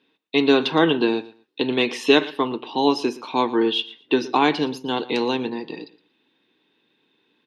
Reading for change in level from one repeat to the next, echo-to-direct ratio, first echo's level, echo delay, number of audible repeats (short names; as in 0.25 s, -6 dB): -14.0 dB, -19.0 dB, -19.0 dB, 0.116 s, 2